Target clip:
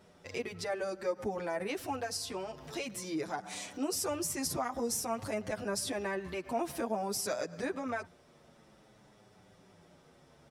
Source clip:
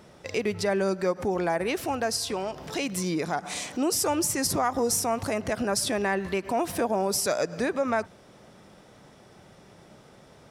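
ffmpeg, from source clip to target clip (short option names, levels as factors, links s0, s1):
-filter_complex "[0:a]asplit=2[s0][s1];[s1]adelay=7.8,afreqshift=-0.52[s2];[s0][s2]amix=inputs=2:normalize=1,volume=0.531"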